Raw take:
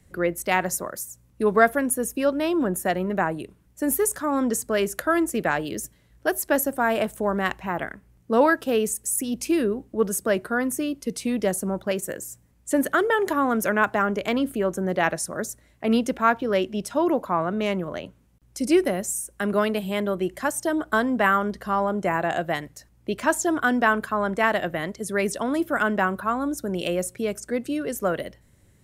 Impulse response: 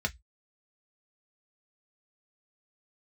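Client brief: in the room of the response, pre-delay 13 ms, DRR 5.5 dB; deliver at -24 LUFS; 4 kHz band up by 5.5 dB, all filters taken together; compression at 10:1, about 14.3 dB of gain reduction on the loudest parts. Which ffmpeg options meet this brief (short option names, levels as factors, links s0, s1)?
-filter_complex "[0:a]equalizer=f=4000:t=o:g=8,acompressor=threshold=0.0447:ratio=10,asplit=2[s0][s1];[1:a]atrim=start_sample=2205,adelay=13[s2];[s1][s2]afir=irnorm=-1:irlink=0,volume=0.266[s3];[s0][s3]amix=inputs=2:normalize=0,volume=2.24"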